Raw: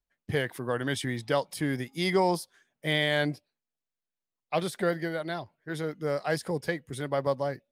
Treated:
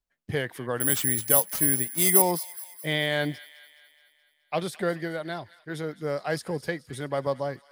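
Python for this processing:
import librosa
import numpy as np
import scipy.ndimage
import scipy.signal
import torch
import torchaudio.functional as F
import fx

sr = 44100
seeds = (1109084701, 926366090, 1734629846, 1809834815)

y = fx.resample_bad(x, sr, factor=4, down='none', up='zero_stuff', at=(0.8, 2.22))
y = fx.echo_wet_highpass(y, sr, ms=212, feedback_pct=57, hz=1600.0, wet_db=-16)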